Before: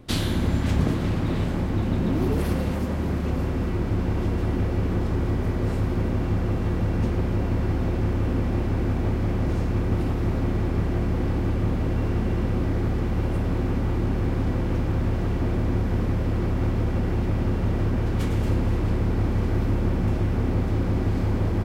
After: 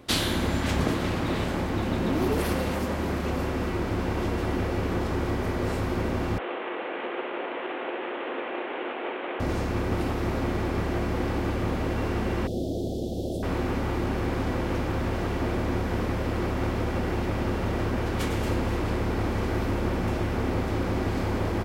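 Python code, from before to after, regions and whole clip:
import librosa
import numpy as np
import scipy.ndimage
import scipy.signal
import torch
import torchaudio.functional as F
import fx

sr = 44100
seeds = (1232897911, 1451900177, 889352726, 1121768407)

y = fx.chain(x, sr, fx.cvsd(bps=16000),
    fx.highpass(hz=360.0, slope=24), at=(6.38, 9.4))
y = fx.chain(y, sr, fx.cheby1_bandstop(low_hz=690.0, high_hz=3400.0, order=4),
    fx.low_shelf(hz=69.0, db=-8.5), at=(12.47, 13.43))
y = scipy.signal.sosfilt(scipy.signal.butter(2, 56.0, 'highpass', fs=sr, output='sos'), y)
y = fx.peak_eq(y, sr, hz=120.0, db=-11.0, octaves=2.5)
y = y * librosa.db_to_amplitude(4.5)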